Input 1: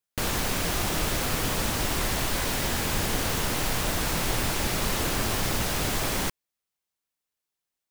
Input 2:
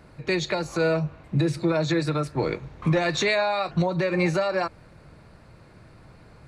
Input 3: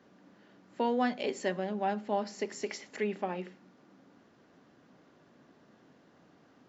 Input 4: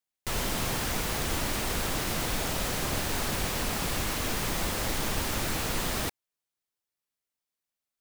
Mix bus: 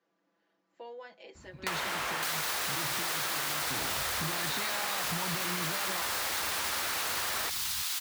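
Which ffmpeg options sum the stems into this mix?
-filter_complex "[0:a]highpass=1.2k,highshelf=f=5.3k:g=11,adelay=2050,volume=-2dB[a];[1:a]alimiter=limit=-20.5dB:level=0:latency=1,adelay=1350,volume=0.5dB[b];[2:a]aecho=1:1:6:0.97,volume=-16.5dB,asplit=2[c][d];[3:a]equalizer=f=1.5k:t=o:w=2.5:g=12,adelay=1400,volume=2.5dB[e];[d]apad=whole_len=345144[f];[b][f]sidechaincompress=threshold=-58dB:ratio=8:attack=42:release=499[g];[a][g]amix=inputs=2:normalize=0,equalizer=f=125:t=o:w=1:g=-7,equalizer=f=250:t=o:w=1:g=8,equalizer=f=500:t=o:w=1:g=-11,equalizer=f=1k:t=o:w=1:g=6,equalizer=f=4k:t=o:w=1:g=7,alimiter=limit=-21dB:level=0:latency=1,volume=0dB[h];[c][e]amix=inputs=2:normalize=0,highpass=420,acompressor=threshold=-31dB:ratio=3,volume=0dB[i];[h][i]amix=inputs=2:normalize=0,equalizer=f=83:t=o:w=1.3:g=13.5,acompressor=threshold=-30dB:ratio=4"

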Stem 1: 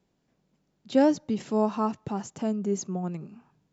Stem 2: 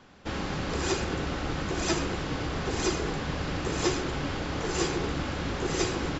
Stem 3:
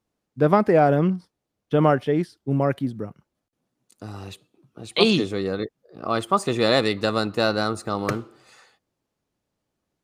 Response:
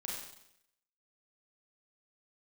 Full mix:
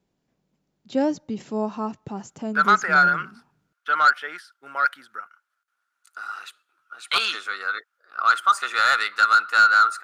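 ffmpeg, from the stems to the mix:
-filter_complex "[0:a]volume=-1.5dB[a];[2:a]highpass=f=1.4k:t=q:w=14,asoftclip=type=tanh:threshold=-9dB,adelay=2150,volume=-0.5dB[b];[a][b]amix=inputs=2:normalize=0"

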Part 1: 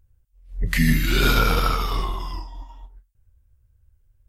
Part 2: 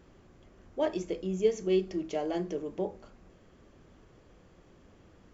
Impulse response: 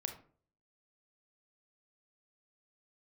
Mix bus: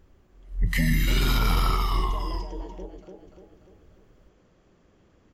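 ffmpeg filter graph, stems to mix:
-filter_complex "[0:a]aecho=1:1:1:0.59,volume=-3.5dB[a];[1:a]acompressor=threshold=-35dB:ratio=6,volume=-4.5dB,asplit=2[b][c];[c]volume=-3.5dB,aecho=0:1:293|586|879|1172|1465|1758|2051|2344:1|0.52|0.27|0.141|0.0731|0.038|0.0198|0.0103[d];[a][b][d]amix=inputs=3:normalize=0,alimiter=limit=-13.5dB:level=0:latency=1:release=33"

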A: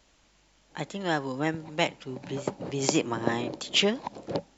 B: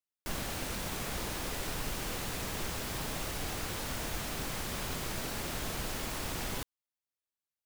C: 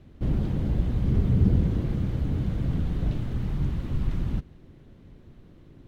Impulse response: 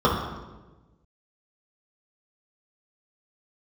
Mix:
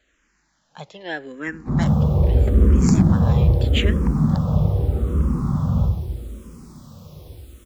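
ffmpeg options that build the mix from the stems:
-filter_complex "[0:a]equalizer=f=1.7k:w=2.7:g=8.5,volume=-1dB[a];[1:a]acrossover=split=140|3000[b][c][d];[c]acompressor=threshold=-51dB:ratio=6[e];[b][e][d]amix=inputs=3:normalize=0,adelay=1600,volume=-11.5dB,asplit=2[f][g];[g]volume=-15.5dB[h];[2:a]equalizer=f=740:w=0.94:g=8,adelay=1450,volume=-6dB,asplit=2[i][j];[j]volume=-8.5dB[k];[3:a]atrim=start_sample=2205[l];[h][k]amix=inputs=2:normalize=0[m];[m][l]afir=irnorm=-1:irlink=0[n];[a][f][i][n]amix=inputs=4:normalize=0,asoftclip=type=hard:threshold=-6dB,asplit=2[o][p];[p]afreqshift=-0.8[q];[o][q]amix=inputs=2:normalize=1"

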